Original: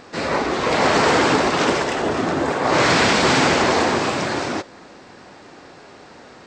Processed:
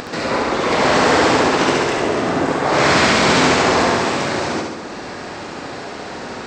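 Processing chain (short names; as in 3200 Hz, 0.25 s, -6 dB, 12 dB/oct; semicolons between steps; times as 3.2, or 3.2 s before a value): upward compressor, threshold -20 dBFS; on a send: flutter echo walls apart 11.9 m, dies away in 1.1 s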